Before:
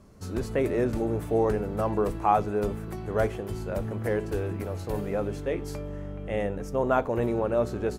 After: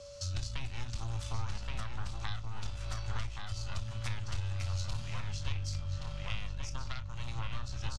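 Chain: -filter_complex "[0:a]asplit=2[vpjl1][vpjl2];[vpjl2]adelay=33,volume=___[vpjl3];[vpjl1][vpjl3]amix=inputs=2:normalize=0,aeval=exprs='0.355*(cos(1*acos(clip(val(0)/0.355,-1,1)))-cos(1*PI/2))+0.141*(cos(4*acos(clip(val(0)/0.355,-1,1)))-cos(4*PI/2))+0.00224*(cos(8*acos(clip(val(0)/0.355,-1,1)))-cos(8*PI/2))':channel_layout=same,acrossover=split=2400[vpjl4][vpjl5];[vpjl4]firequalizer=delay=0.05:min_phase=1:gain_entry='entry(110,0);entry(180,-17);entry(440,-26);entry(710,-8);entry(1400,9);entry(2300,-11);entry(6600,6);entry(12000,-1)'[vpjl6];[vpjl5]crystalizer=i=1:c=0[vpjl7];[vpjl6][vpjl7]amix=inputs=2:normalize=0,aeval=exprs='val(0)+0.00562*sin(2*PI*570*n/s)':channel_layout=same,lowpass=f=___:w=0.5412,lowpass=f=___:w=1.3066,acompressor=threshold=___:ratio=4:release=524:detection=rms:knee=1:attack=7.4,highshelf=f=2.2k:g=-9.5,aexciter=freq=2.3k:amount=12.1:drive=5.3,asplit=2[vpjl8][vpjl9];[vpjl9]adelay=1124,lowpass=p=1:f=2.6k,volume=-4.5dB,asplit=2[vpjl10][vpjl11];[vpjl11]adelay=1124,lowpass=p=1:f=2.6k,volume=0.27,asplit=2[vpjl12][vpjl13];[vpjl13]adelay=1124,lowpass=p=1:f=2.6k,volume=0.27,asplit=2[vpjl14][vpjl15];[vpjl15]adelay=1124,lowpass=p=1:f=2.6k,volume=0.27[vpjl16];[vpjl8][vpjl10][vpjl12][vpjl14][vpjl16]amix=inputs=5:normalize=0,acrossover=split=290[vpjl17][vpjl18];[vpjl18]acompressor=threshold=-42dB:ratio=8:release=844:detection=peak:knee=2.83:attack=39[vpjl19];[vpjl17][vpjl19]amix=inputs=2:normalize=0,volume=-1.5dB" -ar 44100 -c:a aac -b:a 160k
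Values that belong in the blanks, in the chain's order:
-9.5dB, 6k, 6k, -26dB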